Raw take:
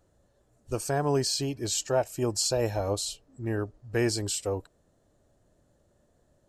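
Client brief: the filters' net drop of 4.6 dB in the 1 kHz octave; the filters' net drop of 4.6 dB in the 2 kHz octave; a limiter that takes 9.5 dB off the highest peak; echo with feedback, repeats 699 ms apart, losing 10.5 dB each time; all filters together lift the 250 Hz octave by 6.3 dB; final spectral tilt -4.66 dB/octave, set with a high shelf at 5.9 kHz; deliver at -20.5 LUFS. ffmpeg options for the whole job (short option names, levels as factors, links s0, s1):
-af "equalizer=f=250:t=o:g=9,equalizer=f=1000:t=o:g=-7.5,equalizer=f=2000:t=o:g=-3,highshelf=f=5900:g=-3.5,alimiter=limit=0.075:level=0:latency=1,aecho=1:1:699|1398|2097:0.299|0.0896|0.0269,volume=3.76"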